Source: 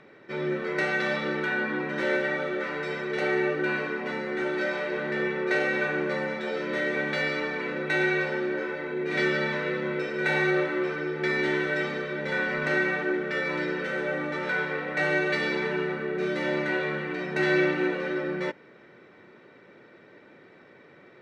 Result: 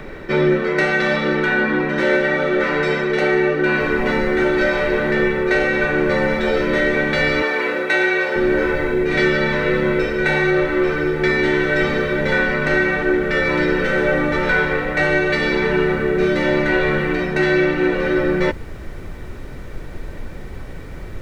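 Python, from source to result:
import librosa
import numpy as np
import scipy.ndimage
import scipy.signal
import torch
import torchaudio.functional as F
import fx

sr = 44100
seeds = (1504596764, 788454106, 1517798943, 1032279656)

y = fx.noise_floor_step(x, sr, seeds[0], at_s=3.81, before_db=-57, after_db=-43, tilt_db=6.0)
y = fx.highpass(y, sr, hz=380.0, slope=12, at=(7.42, 8.36))
y = fx.low_shelf(y, sr, hz=350.0, db=3.5)
y = fx.rider(y, sr, range_db=10, speed_s=0.5)
y = y * librosa.db_to_amplitude(9.0)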